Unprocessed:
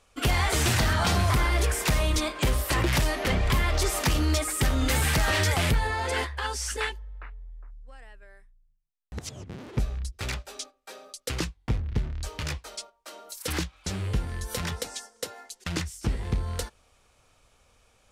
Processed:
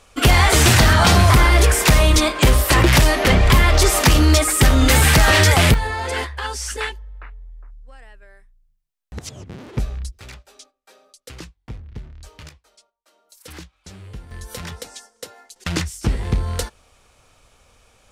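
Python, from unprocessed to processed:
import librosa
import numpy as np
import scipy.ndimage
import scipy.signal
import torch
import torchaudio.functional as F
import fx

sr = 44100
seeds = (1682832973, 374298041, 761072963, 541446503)

y = fx.gain(x, sr, db=fx.steps((0.0, 11.0), (5.74, 4.0), (10.19, -7.0), (12.49, -16.0), (13.32, -8.5), (14.31, -1.0), (15.56, 7.5)))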